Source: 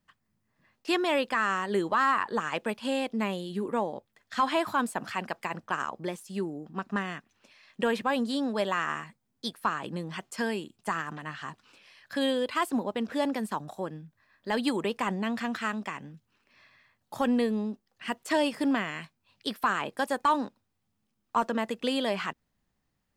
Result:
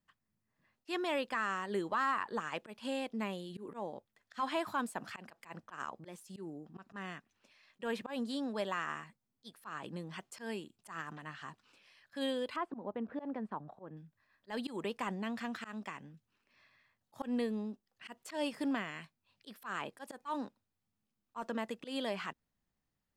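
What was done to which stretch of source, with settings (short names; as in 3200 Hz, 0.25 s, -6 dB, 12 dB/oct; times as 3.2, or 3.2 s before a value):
12.56–13.97 LPF 1400 Hz
whole clip: auto swell 0.122 s; gain -8 dB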